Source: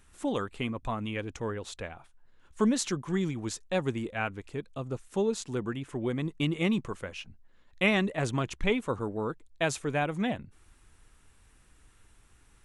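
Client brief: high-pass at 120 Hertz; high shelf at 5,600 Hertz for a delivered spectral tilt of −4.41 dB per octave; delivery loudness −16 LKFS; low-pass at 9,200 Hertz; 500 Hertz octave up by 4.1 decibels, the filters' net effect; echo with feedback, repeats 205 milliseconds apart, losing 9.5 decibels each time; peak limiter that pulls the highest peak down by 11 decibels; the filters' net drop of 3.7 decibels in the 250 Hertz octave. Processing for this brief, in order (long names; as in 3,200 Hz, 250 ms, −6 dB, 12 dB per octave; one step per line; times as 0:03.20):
high-pass filter 120 Hz
low-pass filter 9,200 Hz
parametric band 250 Hz −6.5 dB
parametric band 500 Hz +7 dB
high-shelf EQ 5,600 Hz +6.5 dB
brickwall limiter −20.5 dBFS
repeating echo 205 ms, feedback 33%, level −9.5 dB
level +17 dB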